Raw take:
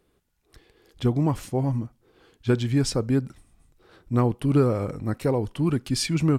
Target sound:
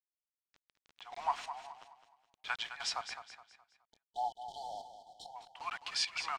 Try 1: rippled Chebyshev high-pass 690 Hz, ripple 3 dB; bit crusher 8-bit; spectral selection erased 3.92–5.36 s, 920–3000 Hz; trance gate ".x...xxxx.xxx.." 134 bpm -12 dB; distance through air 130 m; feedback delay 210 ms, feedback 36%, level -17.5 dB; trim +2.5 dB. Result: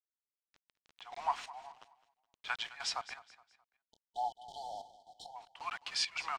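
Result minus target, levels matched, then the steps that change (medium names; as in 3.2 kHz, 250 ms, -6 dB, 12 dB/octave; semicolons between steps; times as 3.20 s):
echo-to-direct -7 dB
change: feedback delay 210 ms, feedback 36%, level -10.5 dB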